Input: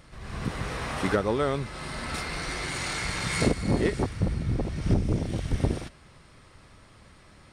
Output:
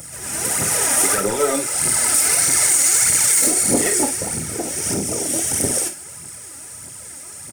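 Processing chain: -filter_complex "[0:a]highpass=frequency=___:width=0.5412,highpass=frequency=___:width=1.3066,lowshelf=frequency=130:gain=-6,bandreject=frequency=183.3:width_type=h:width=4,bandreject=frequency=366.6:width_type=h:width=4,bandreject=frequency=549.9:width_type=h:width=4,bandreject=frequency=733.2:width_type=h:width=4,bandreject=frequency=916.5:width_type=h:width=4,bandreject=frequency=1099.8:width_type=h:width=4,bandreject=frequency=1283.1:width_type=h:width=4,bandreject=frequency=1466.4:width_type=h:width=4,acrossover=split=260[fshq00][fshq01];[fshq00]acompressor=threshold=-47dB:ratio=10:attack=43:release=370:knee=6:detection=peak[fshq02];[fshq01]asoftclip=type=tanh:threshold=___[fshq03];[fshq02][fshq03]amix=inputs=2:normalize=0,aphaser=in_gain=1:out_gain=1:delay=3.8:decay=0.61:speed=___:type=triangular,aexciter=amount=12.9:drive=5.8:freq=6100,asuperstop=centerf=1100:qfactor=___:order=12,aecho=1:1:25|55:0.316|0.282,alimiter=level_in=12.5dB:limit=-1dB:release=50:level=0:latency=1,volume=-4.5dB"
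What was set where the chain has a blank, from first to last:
78, 78, -24dB, 1.6, 6.9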